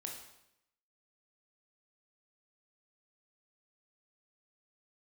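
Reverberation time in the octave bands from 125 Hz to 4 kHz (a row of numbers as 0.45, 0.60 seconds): 0.85, 0.85, 0.85, 0.80, 0.80, 0.75 seconds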